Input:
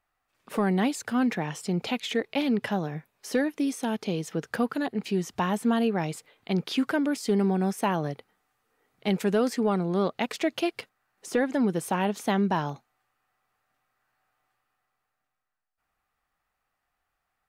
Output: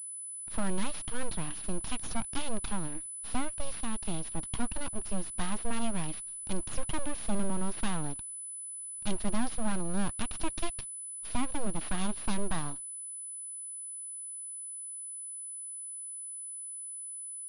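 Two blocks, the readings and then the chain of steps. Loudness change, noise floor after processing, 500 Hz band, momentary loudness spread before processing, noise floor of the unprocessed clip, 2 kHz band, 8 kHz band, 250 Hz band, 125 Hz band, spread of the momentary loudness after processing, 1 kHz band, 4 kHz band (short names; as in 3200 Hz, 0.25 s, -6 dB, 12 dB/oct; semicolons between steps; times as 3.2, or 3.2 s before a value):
-8.5 dB, -42 dBFS, -13.5 dB, 8 LU, -81 dBFS, -9.0 dB, +9.0 dB, -10.0 dB, -7.0 dB, 5 LU, -8.5 dB, -6.5 dB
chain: full-wave rectifier; ten-band EQ 500 Hz -11 dB, 1000 Hz -3 dB, 2000 Hz -9 dB; pulse-width modulation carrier 10000 Hz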